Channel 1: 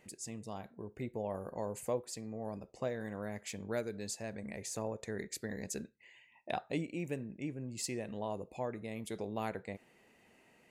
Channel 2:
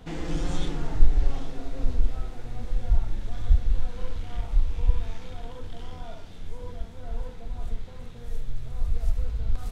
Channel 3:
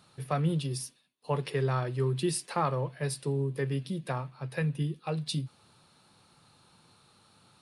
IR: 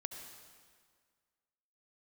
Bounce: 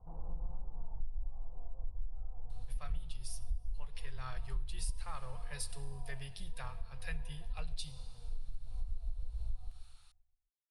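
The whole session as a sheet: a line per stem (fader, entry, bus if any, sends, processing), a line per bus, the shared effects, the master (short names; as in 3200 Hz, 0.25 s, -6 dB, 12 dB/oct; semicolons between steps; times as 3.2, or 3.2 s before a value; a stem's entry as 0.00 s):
off
0.0 dB, 0.00 s, no send, echo send -13.5 dB, steep low-pass 1000 Hz 48 dB/oct
-4.0 dB, 2.50 s, send -7.5 dB, no echo send, dry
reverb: on, RT60 1.8 s, pre-delay 63 ms
echo: feedback echo 0.131 s, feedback 41%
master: passive tone stack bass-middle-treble 10-0-10; compressor 6:1, threshold -32 dBFS, peak gain reduction 18.5 dB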